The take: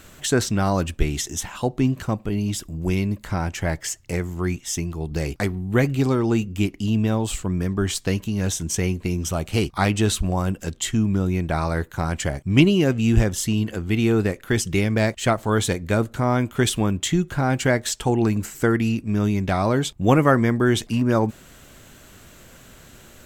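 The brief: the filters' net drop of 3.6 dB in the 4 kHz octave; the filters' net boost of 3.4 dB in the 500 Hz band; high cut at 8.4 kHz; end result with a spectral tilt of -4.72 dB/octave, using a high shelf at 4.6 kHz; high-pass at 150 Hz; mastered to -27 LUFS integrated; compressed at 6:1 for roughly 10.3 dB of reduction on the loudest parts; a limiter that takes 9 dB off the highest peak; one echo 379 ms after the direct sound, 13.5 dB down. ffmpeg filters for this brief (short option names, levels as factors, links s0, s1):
-af "highpass=150,lowpass=8400,equalizer=f=500:t=o:g=4.5,equalizer=f=4000:t=o:g=-8,highshelf=f=4600:g=6,acompressor=threshold=0.0891:ratio=6,alimiter=limit=0.126:level=0:latency=1,aecho=1:1:379:0.211,volume=1.26"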